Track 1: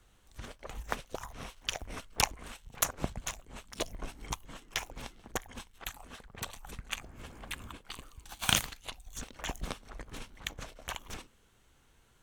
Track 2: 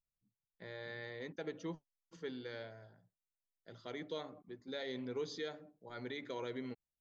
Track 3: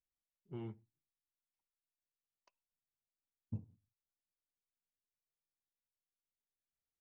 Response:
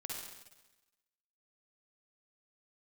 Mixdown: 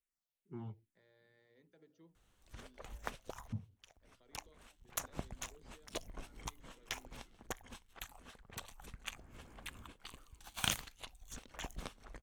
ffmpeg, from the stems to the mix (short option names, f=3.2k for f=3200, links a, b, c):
-filter_complex "[0:a]adelay=2150,volume=-7.5dB[a];[1:a]bandreject=f=60:t=h:w=6,bandreject=f=120:t=h:w=6,bandreject=f=180:t=h:w=6,bandreject=f=240:t=h:w=6,bandreject=f=300:t=h:w=6,bandreject=f=360:t=h:w=6,bandreject=f=420:t=h:w=6,bandreject=f=480:t=h:w=6,acrossover=split=390[b][c];[c]acompressor=threshold=-52dB:ratio=3[d];[b][d]amix=inputs=2:normalize=0,adelay=350,volume=-19dB[e];[2:a]asplit=2[f][g];[g]afreqshift=-2.4[h];[f][h]amix=inputs=2:normalize=1,volume=2dB,asplit=2[i][j];[j]apad=whole_len=633727[k];[a][k]sidechaincompress=threshold=-58dB:ratio=12:attack=6:release=1030[l];[l][e][i]amix=inputs=3:normalize=0"